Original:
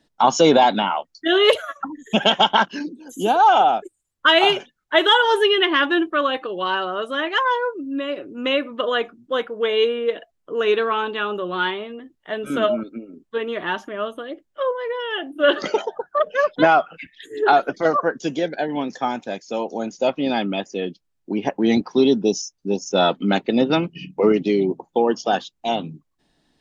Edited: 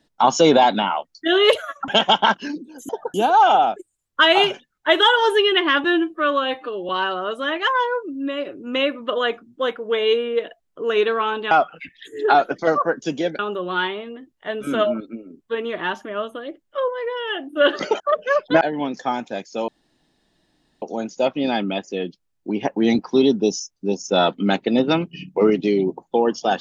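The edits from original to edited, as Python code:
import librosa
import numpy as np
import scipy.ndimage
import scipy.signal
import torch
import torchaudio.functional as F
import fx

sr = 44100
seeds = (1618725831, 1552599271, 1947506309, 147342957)

y = fx.edit(x, sr, fx.cut(start_s=1.88, length_s=0.31),
    fx.stretch_span(start_s=5.9, length_s=0.7, factor=1.5),
    fx.move(start_s=15.83, length_s=0.25, to_s=3.2),
    fx.move(start_s=16.69, length_s=1.88, to_s=11.22),
    fx.insert_room_tone(at_s=19.64, length_s=1.14), tone=tone)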